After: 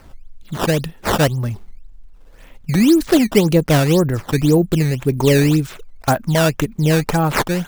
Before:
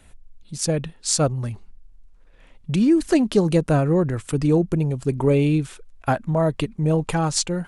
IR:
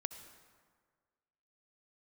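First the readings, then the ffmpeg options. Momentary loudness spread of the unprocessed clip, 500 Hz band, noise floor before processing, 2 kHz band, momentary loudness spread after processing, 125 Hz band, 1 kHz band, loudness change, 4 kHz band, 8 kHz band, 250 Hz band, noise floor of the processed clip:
9 LU, +4.5 dB, −50 dBFS, +10.5 dB, 10 LU, +5.0 dB, +6.0 dB, +4.5 dB, +6.0 dB, −0.5 dB, +4.5 dB, −43 dBFS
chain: -filter_complex "[0:a]asplit=2[link_01][link_02];[link_02]acompressor=threshold=-31dB:ratio=6,volume=-3dB[link_03];[link_01][link_03]amix=inputs=2:normalize=0,acrusher=samples=12:mix=1:aa=0.000001:lfo=1:lforange=19.2:lforate=1.9,volume=3.5dB"

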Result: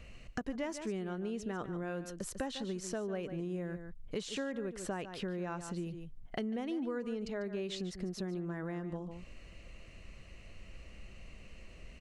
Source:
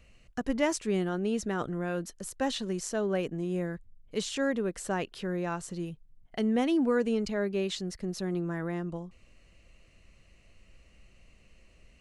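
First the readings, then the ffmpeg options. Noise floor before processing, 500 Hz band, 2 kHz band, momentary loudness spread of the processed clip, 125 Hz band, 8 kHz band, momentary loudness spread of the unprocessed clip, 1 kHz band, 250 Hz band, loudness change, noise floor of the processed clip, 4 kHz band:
−61 dBFS, −8.0 dB, −8.0 dB, 17 LU, −5.5 dB, −7.5 dB, 11 LU, −8.0 dB, −7.5 dB, −8.0 dB, −54 dBFS, −7.0 dB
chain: -filter_complex "[0:a]highshelf=frequency=6400:gain=-7.5,asplit=2[link_01][link_02];[link_02]aecho=0:1:146:0.224[link_03];[link_01][link_03]amix=inputs=2:normalize=0,acompressor=threshold=-44dB:ratio=5,volume=7dB"

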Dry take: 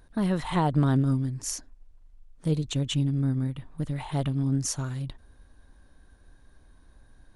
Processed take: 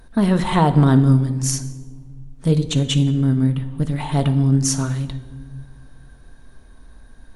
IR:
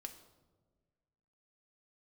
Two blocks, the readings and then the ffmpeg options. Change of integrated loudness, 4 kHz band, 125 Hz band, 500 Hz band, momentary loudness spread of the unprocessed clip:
+9.5 dB, +9.0 dB, +9.5 dB, +9.5 dB, 11 LU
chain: -filter_complex "[0:a]asplit=2[link_01][link_02];[1:a]atrim=start_sample=2205,asetrate=33957,aresample=44100[link_03];[link_02][link_03]afir=irnorm=-1:irlink=0,volume=9dB[link_04];[link_01][link_04]amix=inputs=2:normalize=0"

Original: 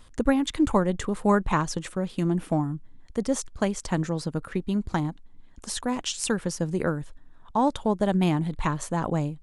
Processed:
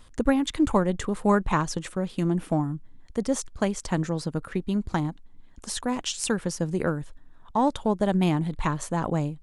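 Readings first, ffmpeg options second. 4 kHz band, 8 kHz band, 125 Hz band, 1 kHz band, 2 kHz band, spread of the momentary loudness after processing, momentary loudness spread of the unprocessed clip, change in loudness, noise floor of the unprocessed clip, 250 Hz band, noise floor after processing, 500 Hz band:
0.0 dB, 0.0 dB, 0.0 dB, 0.0 dB, 0.0 dB, 8 LU, 8 LU, 0.0 dB, −50 dBFS, 0.0 dB, −50 dBFS, 0.0 dB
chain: -af "aeval=exprs='0.422*(cos(1*acos(clip(val(0)/0.422,-1,1)))-cos(1*PI/2))+0.00266*(cos(8*acos(clip(val(0)/0.422,-1,1)))-cos(8*PI/2))':channel_layout=same"

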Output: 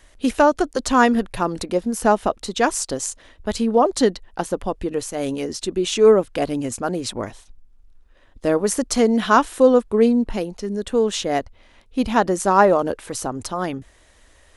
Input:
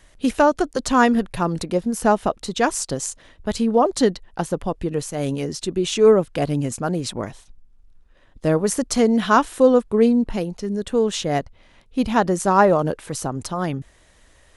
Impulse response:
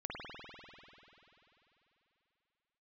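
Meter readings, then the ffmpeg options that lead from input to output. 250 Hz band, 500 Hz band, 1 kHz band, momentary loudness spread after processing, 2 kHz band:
−0.5 dB, +1.0 dB, +1.0 dB, 12 LU, +1.0 dB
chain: -af "equalizer=frequency=150:width=3.4:gain=-12.5,volume=1dB"

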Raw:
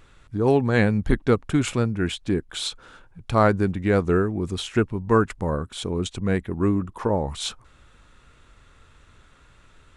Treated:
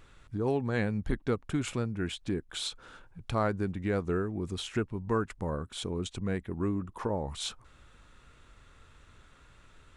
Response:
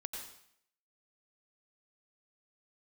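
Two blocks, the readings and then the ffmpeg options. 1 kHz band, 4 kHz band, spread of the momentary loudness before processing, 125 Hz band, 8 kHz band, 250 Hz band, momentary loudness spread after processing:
−10.5 dB, −6.5 dB, 9 LU, −9.5 dB, −7.0 dB, −9.5 dB, 6 LU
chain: -af "acompressor=threshold=-34dB:ratio=1.5,volume=-3.5dB"

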